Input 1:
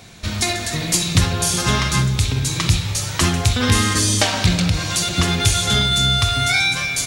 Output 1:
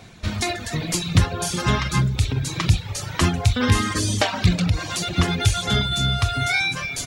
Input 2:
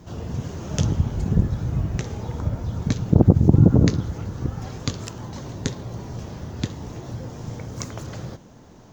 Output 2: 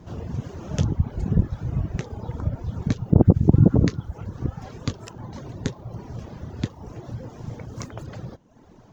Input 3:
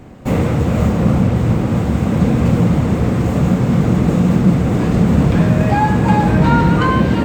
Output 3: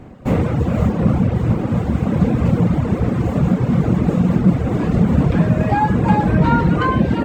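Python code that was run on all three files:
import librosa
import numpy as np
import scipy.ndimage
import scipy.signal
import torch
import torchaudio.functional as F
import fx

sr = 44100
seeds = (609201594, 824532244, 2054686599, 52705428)

y = fx.dereverb_blind(x, sr, rt60_s=0.85)
y = fx.high_shelf(y, sr, hz=3600.0, db=-9.0)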